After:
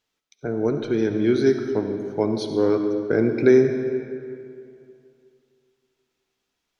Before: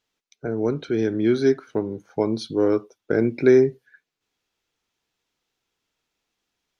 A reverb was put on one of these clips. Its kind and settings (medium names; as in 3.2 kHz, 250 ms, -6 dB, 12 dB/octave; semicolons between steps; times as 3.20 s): algorithmic reverb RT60 2.5 s, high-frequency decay 0.7×, pre-delay 30 ms, DRR 6 dB